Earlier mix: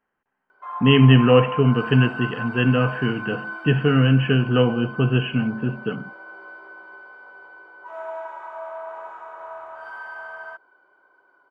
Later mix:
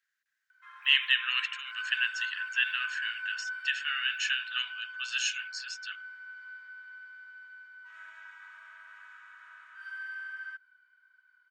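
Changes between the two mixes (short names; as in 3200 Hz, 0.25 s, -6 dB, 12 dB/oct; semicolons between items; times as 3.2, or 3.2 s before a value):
speech: remove brick-wall FIR low-pass 3300 Hz; master: add elliptic high-pass 1600 Hz, stop band 80 dB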